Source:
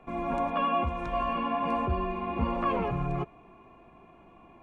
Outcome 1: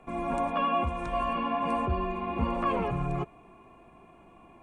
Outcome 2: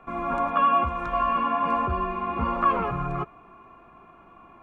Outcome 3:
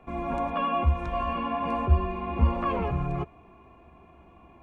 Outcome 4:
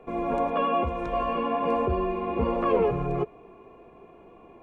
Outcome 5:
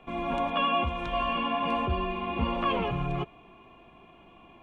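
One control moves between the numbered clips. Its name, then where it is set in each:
peaking EQ, frequency: 8.9 kHz, 1.3 kHz, 72 Hz, 450 Hz, 3.2 kHz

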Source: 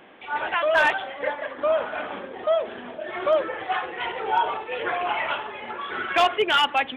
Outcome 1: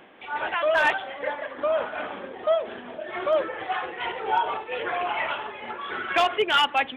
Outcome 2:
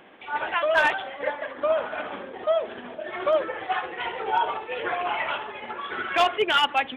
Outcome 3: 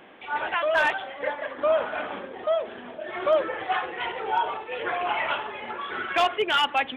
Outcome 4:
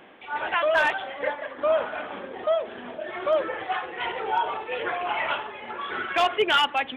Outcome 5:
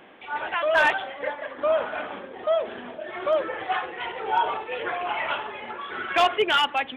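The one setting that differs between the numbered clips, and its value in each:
tremolo, rate: 4.4 Hz, 14 Hz, 0.55 Hz, 1.7 Hz, 1.1 Hz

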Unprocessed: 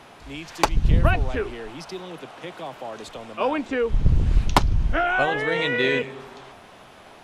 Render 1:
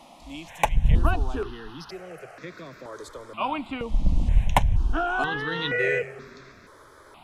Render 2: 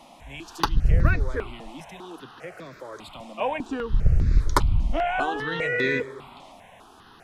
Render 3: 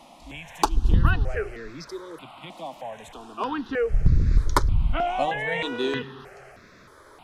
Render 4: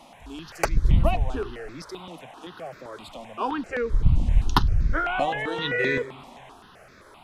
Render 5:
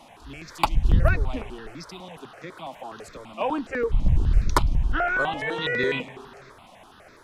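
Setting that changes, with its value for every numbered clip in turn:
stepped phaser, rate: 2.1 Hz, 5 Hz, 3.2 Hz, 7.7 Hz, 12 Hz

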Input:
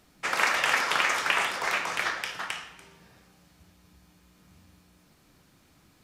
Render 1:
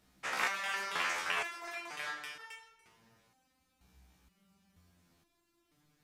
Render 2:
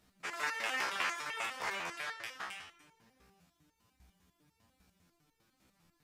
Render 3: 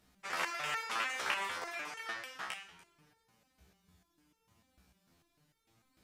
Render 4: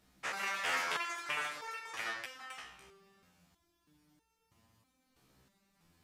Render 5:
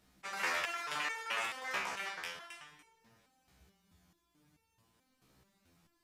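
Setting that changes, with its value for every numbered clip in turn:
resonator arpeggio, rate: 2.1 Hz, 10 Hz, 6.7 Hz, 3.1 Hz, 4.6 Hz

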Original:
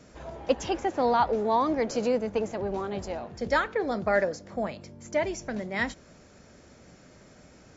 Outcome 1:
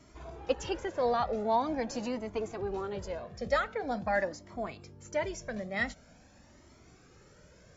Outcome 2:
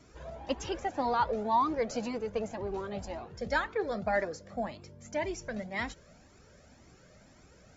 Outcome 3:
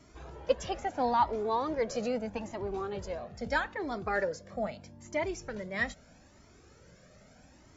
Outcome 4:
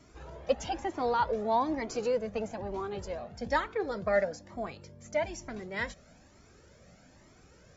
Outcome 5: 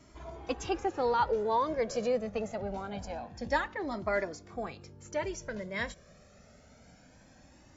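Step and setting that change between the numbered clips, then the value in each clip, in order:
Shepard-style flanger, rate: 0.45 Hz, 1.9 Hz, 0.78 Hz, 1.1 Hz, 0.25 Hz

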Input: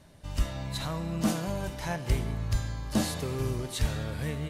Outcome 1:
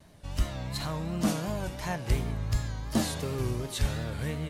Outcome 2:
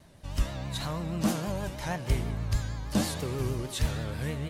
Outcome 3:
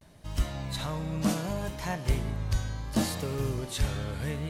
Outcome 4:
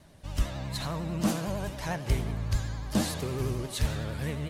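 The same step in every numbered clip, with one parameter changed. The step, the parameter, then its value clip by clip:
vibrato, rate: 2.8 Hz, 6.3 Hz, 0.69 Hz, 11 Hz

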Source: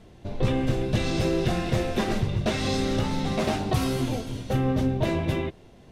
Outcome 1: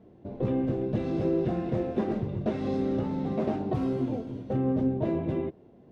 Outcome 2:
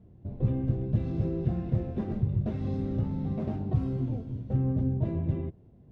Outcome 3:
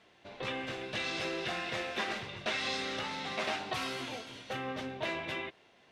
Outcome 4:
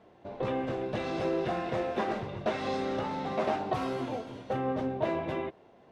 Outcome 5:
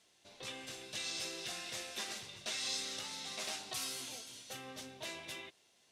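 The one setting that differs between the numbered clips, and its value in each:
band-pass filter, frequency: 310 Hz, 110 Hz, 2.2 kHz, 830 Hz, 7.7 kHz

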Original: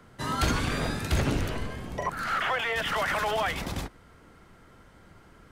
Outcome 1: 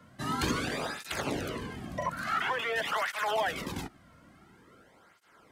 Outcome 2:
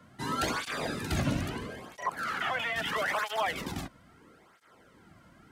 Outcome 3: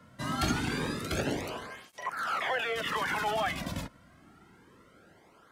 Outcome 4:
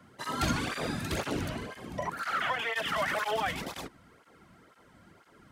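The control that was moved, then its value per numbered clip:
cancelling through-zero flanger, nulls at: 0.48 Hz, 0.76 Hz, 0.26 Hz, 2 Hz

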